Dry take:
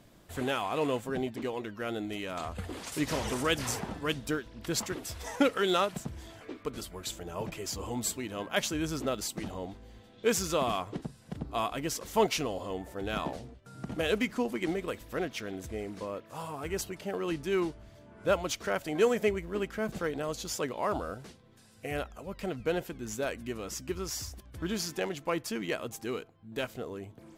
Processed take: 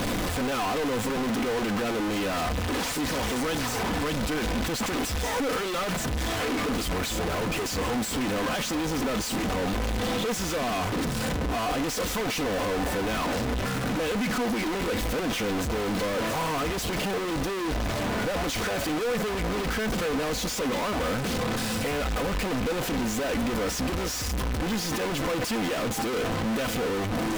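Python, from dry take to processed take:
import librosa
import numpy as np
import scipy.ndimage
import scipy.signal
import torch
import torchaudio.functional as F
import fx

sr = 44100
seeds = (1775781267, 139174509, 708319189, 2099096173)

y = np.sign(x) * np.sqrt(np.mean(np.square(x)))
y = fx.high_shelf(y, sr, hz=5700.0, db=-8.5)
y = y + 0.32 * np.pad(y, (int(4.0 * sr / 1000.0), 0))[:len(y)]
y = y * 10.0 ** (6.5 / 20.0)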